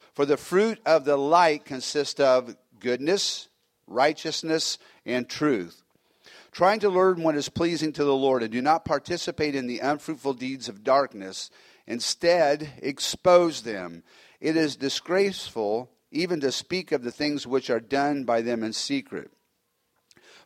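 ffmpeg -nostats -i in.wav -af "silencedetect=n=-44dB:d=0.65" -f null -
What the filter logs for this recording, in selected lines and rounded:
silence_start: 19.27
silence_end: 20.11 | silence_duration: 0.84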